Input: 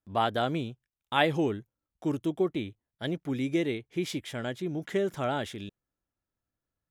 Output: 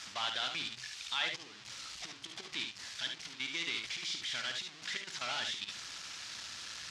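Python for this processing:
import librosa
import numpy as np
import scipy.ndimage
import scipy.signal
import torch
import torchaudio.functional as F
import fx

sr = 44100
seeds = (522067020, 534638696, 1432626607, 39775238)

y = x + 0.5 * 10.0 ** (-26.5 / 20.0) * np.sign(x)
y = fx.highpass(y, sr, hz=120.0, slope=6)
y = fx.tilt_eq(y, sr, slope=4.5)
y = fx.hpss(y, sr, part='harmonic', gain_db=-5)
y = fx.peak_eq(y, sr, hz=460.0, db=-13.5, octaves=2.4)
y = fx.level_steps(y, sr, step_db=16)
y = 10.0 ** (-19.0 / 20.0) * np.tanh(y / 10.0 ** (-19.0 / 20.0))
y = scipy.signal.sosfilt(scipy.signal.butter(4, 5300.0, 'lowpass', fs=sr, output='sos'), y)
y = fx.room_early_taps(y, sr, ms=(54, 72), db=(-9.5, -6.5))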